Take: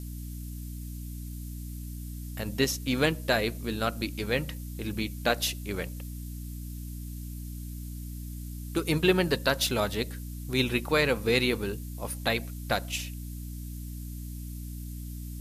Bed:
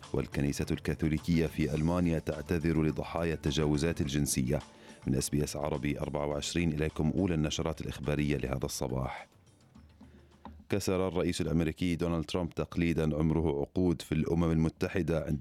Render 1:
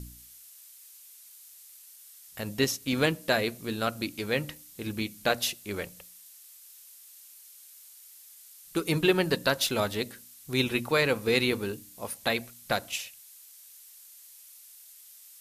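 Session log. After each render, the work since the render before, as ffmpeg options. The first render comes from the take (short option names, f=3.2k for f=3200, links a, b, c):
-af "bandreject=f=60:t=h:w=4,bandreject=f=120:t=h:w=4,bandreject=f=180:t=h:w=4,bandreject=f=240:t=h:w=4,bandreject=f=300:t=h:w=4"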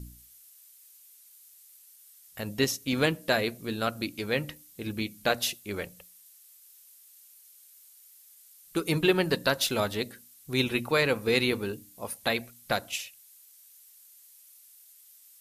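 -af "afftdn=nr=6:nf=-52"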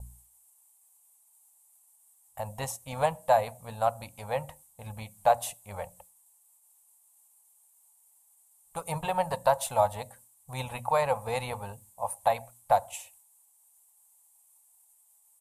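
-af "agate=range=-33dB:threshold=-50dB:ratio=3:detection=peak,firequalizer=gain_entry='entry(100,0);entry(350,-28);entry(520,1);entry(850,14);entry(1400,-9);entry(5100,-16);entry(8200,3);entry(14000,-9)':delay=0.05:min_phase=1"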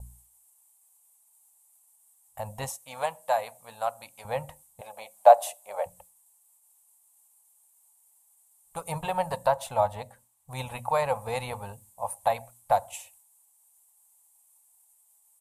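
-filter_complex "[0:a]asettb=1/sr,asplit=3[a][b][c];[a]atrim=end=2.694[d];[b]atrim=start=2.69:end=4.25,asetpts=PTS-STARTPTS,afade=t=in:d=0.004:c=qsin,afade=t=out:st=1.556:d=0.004:c=qsin,highpass=f=750:p=1[e];[c]atrim=start=4.246[f];[d][e]acrossfade=d=0.004:c1=hsin:c2=qsin[g];[g][f]acrossfade=d=0.004:c1=qsin:c2=hsin,asettb=1/sr,asplit=3[h][i][j];[h]atrim=end=4.814[k];[i]atrim=start=4.81:end=5.86,asetpts=PTS-STARTPTS,afade=t=in:d=0.004:c=qsin,afade=t=out:st=1.046:d=0.004:c=qsin,highpass=f=600:t=q:w=3[l];[j]atrim=start=5.856[m];[k][l]acrossfade=d=0.004:c1=hsin:c2=qsin[n];[n][m]acrossfade=d=0.004:c1=qsin:c2=hsin,asettb=1/sr,asplit=3[o][p][q];[o]atrim=end=9.474[r];[p]atrim=start=9.47:end=10.51,asetpts=PTS-STARTPTS,afade=t=in:d=0.004:c=qsin,afade=t=out:st=1.036:d=0.004:c=qsin,equalizer=f=11k:t=o:w=1.8:g=-8[s];[q]atrim=start=10.506[t];[r][s]acrossfade=d=0.004:c1=hsin:c2=qsin[u];[u][t]acrossfade=d=0.004:c1=qsin:c2=hsin"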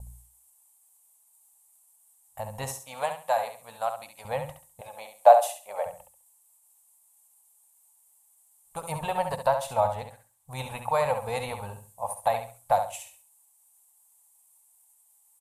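-af "aecho=1:1:68|136|204:0.398|0.107|0.029"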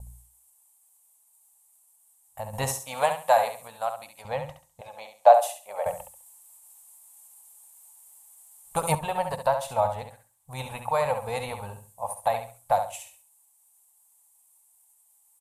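-filter_complex "[0:a]asettb=1/sr,asplit=3[a][b][c];[a]atrim=end=2.534[d];[b]atrim=start=2.53:end=3.68,asetpts=PTS-STARTPTS,afade=t=in:d=0.004:c=qsin,afade=t=out:st=1.146:d=0.004:c=qsin,acontrast=51[e];[c]atrim=start=3.676[f];[d][e]acrossfade=d=0.004:c1=hsin:c2=qsin[g];[g][f]acrossfade=d=0.004:c1=qsin:c2=hsin,asettb=1/sr,asplit=3[h][i][j];[h]atrim=end=4.224[k];[i]atrim=start=4.22:end=5.34,asetpts=PTS-STARTPTS,afade=t=in:d=0.004:c=qsin,afade=t=out:st=1.116:d=0.004:c=qsin,highshelf=f=7.4k:t=q:w=1.5:g=-7[l];[j]atrim=start=5.336[m];[k][l]acrossfade=d=0.004:c1=hsin:c2=qsin[n];[n][m]acrossfade=d=0.004:c1=qsin:c2=hsin,asplit=3[o][p][q];[o]atrim=end=5.862[r];[p]atrim=start=5.858:end=8.952,asetpts=PTS-STARTPTS,volume=9.5dB[s];[q]atrim=start=8.948[t];[r][s]acrossfade=d=0.004:c1=hsin:c2=hsin[u];[u][t]acrossfade=d=0.004:c1=hsin:c2=hsin"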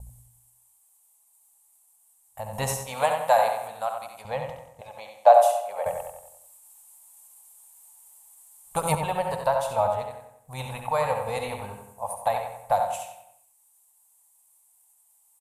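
-filter_complex "[0:a]asplit=2[a][b];[b]adelay=92,lowpass=f=3.1k:p=1,volume=-6dB,asplit=2[c][d];[d]adelay=92,lowpass=f=3.1k:p=1,volume=0.48,asplit=2[e][f];[f]adelay=92,lowpass=f=3.1k:p=1,volume=0.48,asplit=2[g][h];[h]adelay=92,lowpass=f=3.1k:p=1,volume=0.48,asplit=2[i][j];[j]adelay=92,lowpass=f=3.1k:p=1,volume=0.48,asplit=2[k][l];[l]adelay=92,lowpass=f=3.1k:p=1,volume=0.48[m];[a][c][e][g][i][k][m]amix=inputs=7:normalize=0"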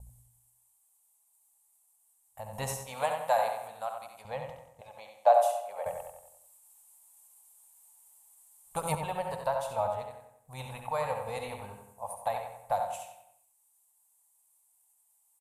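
-af "volume=-7dB"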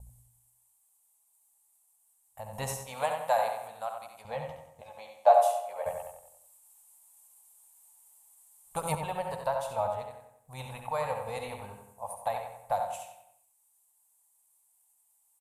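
-filter_complex "[0:a]asettb=1/sr,asplit=3[a][b][c];[a]atrim=end=4.274[d];[b]atrim=start=4.27:end=6.15,asetpts=PTS-STARTPTS,afade=t=in:d=0.004:c=qsin,afade=t=out:st=1.876:d=0.004:c=qsin,asplit=2[e][f];[f]adelay=13,volume=-5.5dB[g];[e][g]amix=inputs=2:normalize=0,atrim=end_sample=82908[h];[c]atrim=start=6.146[i];[d][h]acrossfade=d=0.004:c1=hsin:c2=qsin[j];[j][i]acrossfade=d=0.004:c1=qsin:c2=hsin"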